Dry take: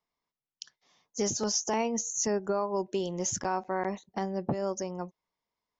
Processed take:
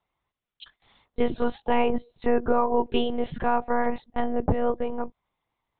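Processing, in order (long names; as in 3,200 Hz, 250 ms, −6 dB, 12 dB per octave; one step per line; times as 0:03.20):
one-pitch LPC vocoder at 8 kHz 240 Hz
level +8 dB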